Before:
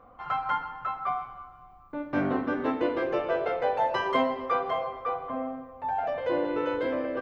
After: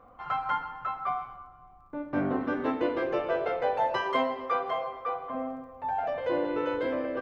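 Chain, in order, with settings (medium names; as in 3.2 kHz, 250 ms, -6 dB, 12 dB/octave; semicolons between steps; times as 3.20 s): 3.98–5.35 s: bass shelf 240 Hz -7 dB; crackle 15 per s -56 dBFS; 1.36–2.41 s: treble shelf 2.3 kHz -9 dB; trim -1 dB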